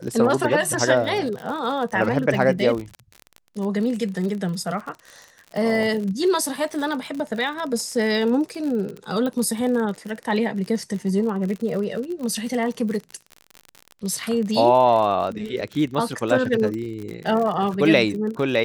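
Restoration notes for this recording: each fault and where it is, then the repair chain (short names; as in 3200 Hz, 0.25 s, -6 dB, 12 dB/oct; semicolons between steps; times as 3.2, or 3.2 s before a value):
crackle 47/s -28 dBFS
9.26 pop -16 dBFS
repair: de-click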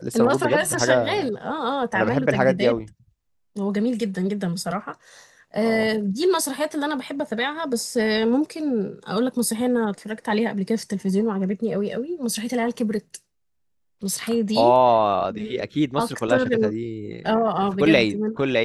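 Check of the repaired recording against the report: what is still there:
none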